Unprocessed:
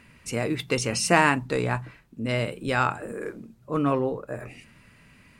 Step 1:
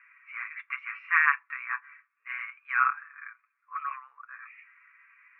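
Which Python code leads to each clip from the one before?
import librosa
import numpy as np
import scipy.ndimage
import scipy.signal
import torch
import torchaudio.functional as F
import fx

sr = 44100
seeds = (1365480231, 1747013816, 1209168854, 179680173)

y = scipy.signal.sosfilt(scipy.signal.cheby1(4, 1.0, [1100.0, 2400.0], 'bandpass', fs=sr, output='sos'), x)
y = y + 0.72 * np.pad(y, (int(6.9 * sr / 1000.0), 0))[:len(y)]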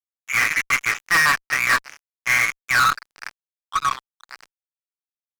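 y = fx.rider(x, sr, range_db=4, speed_s=0.5)
y = fx.fuzz(y, sr, gain_db=34.0, gate_db=-42.0)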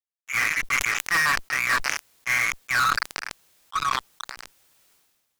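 y = fx.sustainer(x, sr, db_per_s=37.0)
y = y * librosa.db_to_amplitude(-5.0)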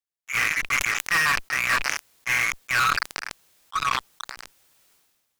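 y = fx.rattle_buzz(x, sr, strikes_db=-41.0, level_db=-15.0)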